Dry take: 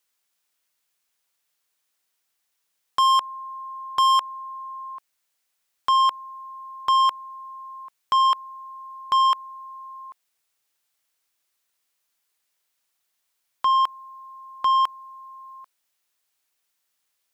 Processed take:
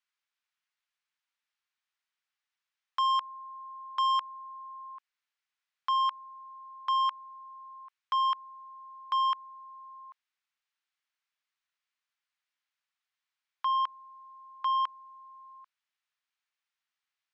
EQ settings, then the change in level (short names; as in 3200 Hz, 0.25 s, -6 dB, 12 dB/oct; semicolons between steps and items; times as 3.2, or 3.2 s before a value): HPF 920 Hz 12 dB/oct; band-pass 1600 Hz, Q 0.56; air absorption 53 m; -5.5 dB